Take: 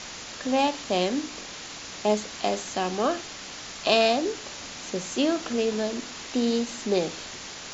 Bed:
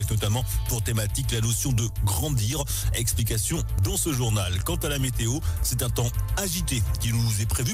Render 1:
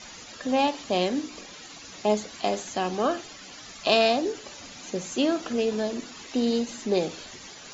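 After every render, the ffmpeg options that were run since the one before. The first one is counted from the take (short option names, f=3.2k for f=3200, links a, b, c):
-af "afftdn=nr=12:nf=-40"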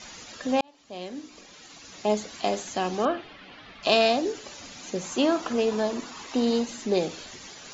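-filter_complex "[0:a]asettb=1/sr,asplit=3[a][b][c];[a]atrim=end=3.054[d];[b]atrim=start=3.05:end=3.83,asetpts=PTS-STARTPTS,afade=t=in:d=0.004:c=qsin,afade=t=out:st=0.776:d=0.004:c=qsin,lowpass=f=3.4k:w=0.5412,lowpass=f=3.4k:w=1.3066[e];[c]atrim=start=3.826[f];[d][e]acrossfade=d=0.004:c1=hsin:c2=qsin[g];[g][f]acrossfade=d=0.004:c1=qsin:c2=hsin,asettb=1/sr,asplit=3[h][i][j];[h]atrim=end=5.034[k];[i]atrim=start=5.03:end=6.67,asetpts=PTS-STARTPTS,afade=t=in:d=0.004:c=qsin,afade=t=out:st=1.636:d=0.004:c=qsin,equalizer=f=1k:w=1.5:g=8[l];[j]atrim=start=6.666[m];[k][l]acrossfade=d=0.004:c1=hsin:c2=qsin[n];[n][m]acrossfade=d=0.004:c1=qsin:c2=hsin,asplit=2[o][p];[o]atrim=end=0.61,asetpts=PTS-STARTPTS,afade=t=out:st=0.606:d=0.004:c=hsin[q];[p]atrim=start=0.61,asetpts=PTS-STARTPTS,afade=t=in:d=1.69[r];[q][r]concat=n=2:v=0:a=1"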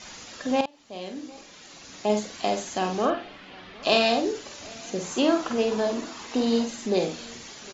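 -filter_complex "[0:a]asplit=2[a][b];[b]adelay=48,volume=-6dB[c];[a][c]amix=inputs=2:normalize=0,asplit=2[d][e];[e]adelay=758,volume=-23dB,highshelf=f=4k:g=-17.1[f];[d][f]amix=inputs=2:normalize=0"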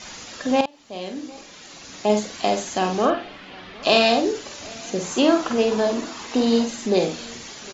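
-af "volume=4.5dB,alimiter=limit=-3dB:level=0:latency=1"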